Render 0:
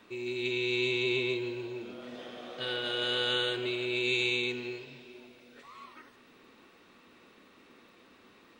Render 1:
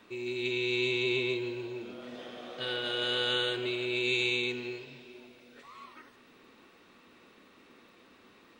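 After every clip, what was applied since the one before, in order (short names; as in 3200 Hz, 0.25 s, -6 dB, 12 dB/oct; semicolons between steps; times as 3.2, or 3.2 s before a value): nothing audible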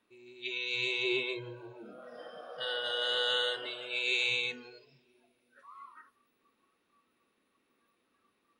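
de-hum 62.39 Hz, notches 3; spectral noise reduction 18 dB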